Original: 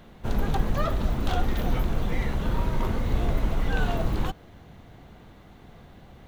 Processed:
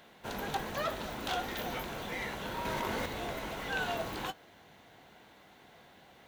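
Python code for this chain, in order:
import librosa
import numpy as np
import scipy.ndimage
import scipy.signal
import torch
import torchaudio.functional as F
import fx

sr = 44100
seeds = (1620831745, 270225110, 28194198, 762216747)

y = fx.highpass(x, sr, hz=880.0, slope=6)
y = fx.notch(y, sr, hz=1200.0, q=11.0)
y = fx.doubler(y, sr, ms=20.0, db=-14.0)
y = fx.env_flatten(y, sr, amount_pct=100, at=(2.65, 3.06))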